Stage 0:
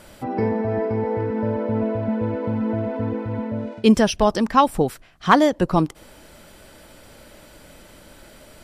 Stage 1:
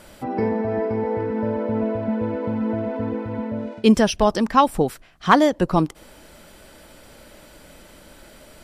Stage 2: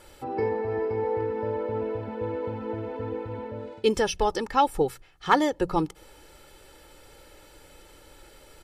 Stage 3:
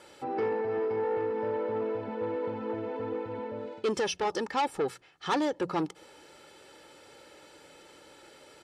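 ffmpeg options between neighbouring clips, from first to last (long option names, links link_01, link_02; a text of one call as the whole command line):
ffmpeg -i in.wav -af "equalizer=frequency=110:width_type=o:width=0.37:gain=-5" out.wav
ffmpeg -i in.wav -af "bandreject=frequency=60:width_type=h:width=6,bandreject=frequency=120:width_type=h:width=6,bandreject=frequency=180:width_type=h:width=6,aecho=1:1:2.3:0.66,volume=-6.5dB" out.wav
ffmpeg -i in.wav -af "asoftclip=type=tanh:threshold=-23.5dB,highpass=170,lowpass=7800" out.wav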